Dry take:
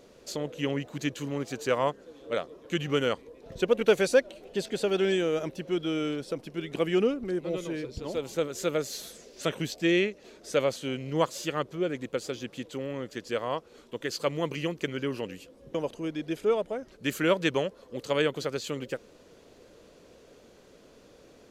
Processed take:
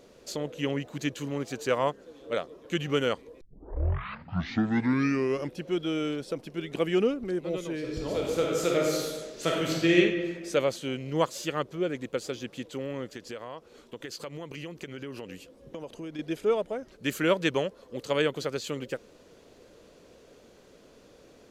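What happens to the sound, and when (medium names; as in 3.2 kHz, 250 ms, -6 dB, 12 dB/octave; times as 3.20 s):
3.41 s: tape start 2.25 s
7.78–9.97 s: reverb throw, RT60 1.5 s, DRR -2 dB
13.10–16.19 s: compression, threshold -35 dBFS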